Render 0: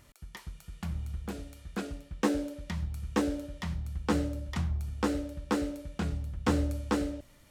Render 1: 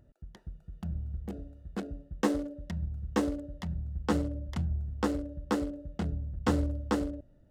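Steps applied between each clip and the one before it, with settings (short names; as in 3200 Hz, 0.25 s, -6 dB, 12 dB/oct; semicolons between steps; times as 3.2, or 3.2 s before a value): Wiener smoothing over 41 samples; bell 640 Hz +3.5 dB 0.32 oct; notch 2400 Hz, Q 9.8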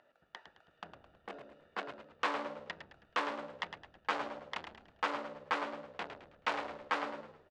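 soft clip -32 dBFS, distortion -7 dB; Butterworth band-pass 1700 Hz, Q 0.63; on a send: frequency-shifting echo 0.107 s, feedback 39%, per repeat -66 Hz, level -9 dB; on the sum: gain +11 dB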